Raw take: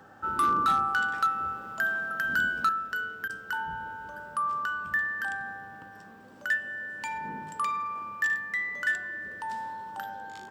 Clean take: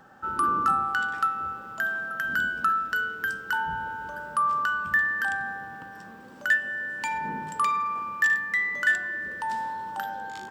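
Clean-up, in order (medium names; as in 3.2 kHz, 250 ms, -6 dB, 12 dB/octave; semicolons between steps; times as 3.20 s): clip repair -19.5 dBFS; de-hum 102.9 Hz, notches 7; interpolate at 3.28 s, 13 ms; gain correction +5 dB, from 2.69 s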